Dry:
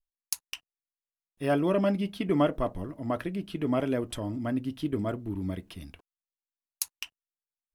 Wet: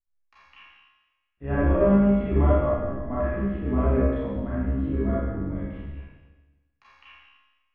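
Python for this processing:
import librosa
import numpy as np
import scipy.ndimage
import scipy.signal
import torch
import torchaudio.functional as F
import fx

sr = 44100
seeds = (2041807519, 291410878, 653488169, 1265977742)

y = fx.octave_divider(x, sr, octaves=2, level_db=-1.0)
y = scipy.signal.sosfilt(scipy.signal.butter(4, 2000.0, 'lowpass', fs=sr, output='sos'), y)
y = fx.peak_eq(y, sr, hz=78.0, db=6.0, octaves=0.65)
y = fx.comb_fb(y, sr, f0_hz=67.0, decay_s=0.71, harmonics='all', damping=0.0, mix_pct=90)
y = fx.rev_schroeder(y, sr, rt60_s=1.2, comb_ms=28, drr_db=-9.5)
y = F.gain(torch.from_numpy(y), 4.0).numpy()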